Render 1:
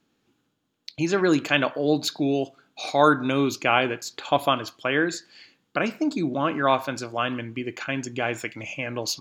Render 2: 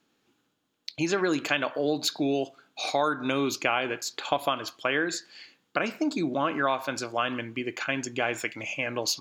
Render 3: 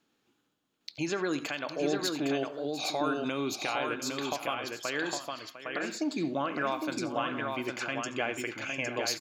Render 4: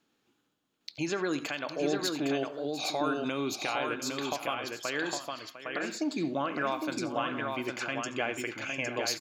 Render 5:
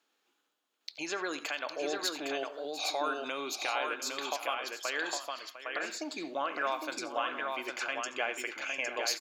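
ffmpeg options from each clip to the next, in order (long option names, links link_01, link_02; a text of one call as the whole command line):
ffmpeg -i in.wav -af "lowshelf=frequency=230:gain=-9,acompressor=threshold=-23dB:ratio=6,volume=1.5dB" out.wav
ffmpeg -i in.wav -filter_complex "[0:a]alimiter=limit=-16.5dB:level=0:latency=1:release=320,asplit=2[link_01][link_02];[link_02]aecho=0:1:73|87|702|809:0.1|0.126|0.224|0.631[link_03];[link_01][link_03]amix=inputs=2:normalize=0,volume=-3.5dB" out.wav
ffmpeg -i in.wav -af anull out.wav
ffmpeg -i in.wav -af "highpass=520" out.wav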